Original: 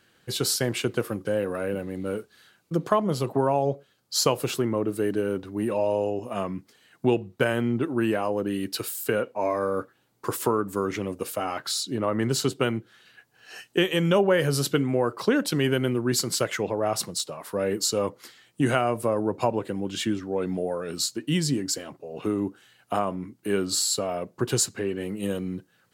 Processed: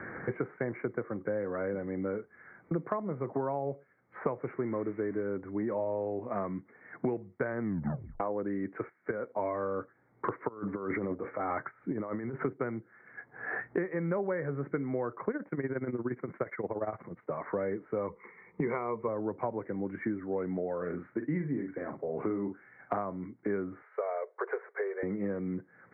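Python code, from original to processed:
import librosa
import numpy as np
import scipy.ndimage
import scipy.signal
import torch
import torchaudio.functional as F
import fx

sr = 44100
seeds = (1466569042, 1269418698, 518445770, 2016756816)

y = fx.crossing_spikes(x, sr, level_db=-24.0, at=(4.43, 5.23))
y = fx.level_steps(y, sr, step_db=11, at=(8.89, 9.38))
y = fx.over_compress(y, sr, threshold_db=-31.0, ratio=-0.5, at=(10.47, 12.43), fade=0.02)
y = fx.tremolo(y, sr, hz=17.0, depth=0.8, at=(15.3, 17.29))
y = fx.ripple_eq(y, sr, per_octave=0.82, db=14, at=(18.08, 19.08))
y = fx.doubler(y, sr, ms=45.0, db=-7.5, at=(20.77, 22.98))
y = fx.cheby1_highpass(y, sr, hz=410.0, order=6, at=(23.82, 25.03))
y = fx.edit(y, sr, fx.tape_stop(start_s=7.61, length_s=0.59), tone=tone)
y = scipy.signal.sosfilt(scipy.signal.cheby1(8, 1.0, 2200.0, 'lowpass', fs=sr, output='sos'), y)
y = fx.low_shelf(y, sr, hz=89.0, db=-6.5)
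y = fx.band_squash(y, sr, depth_pct=100)
y = y * 10.0 ** (-7.0 / 20.0)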